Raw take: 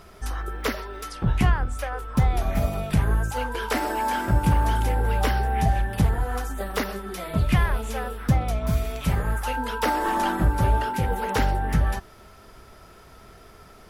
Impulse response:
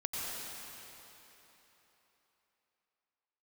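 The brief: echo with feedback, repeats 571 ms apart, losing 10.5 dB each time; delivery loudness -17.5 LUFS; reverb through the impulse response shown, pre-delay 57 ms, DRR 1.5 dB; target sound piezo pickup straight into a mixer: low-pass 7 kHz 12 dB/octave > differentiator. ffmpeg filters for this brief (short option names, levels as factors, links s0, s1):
-filter_complex "[0:a]aecho=1:1:571|1142|1713:0.299|0.0896|0.0269,asplit=2[s0][s1];[1:a]atrim=start_sample=2205,adelay=57[s2];[s1][s2]afir=irnorm=-1:irlink=0,volume=0.501[s3];[s0][s3]amix=inputs=2:normalize=0,lowpass=7000,aderivative,volume=14.1"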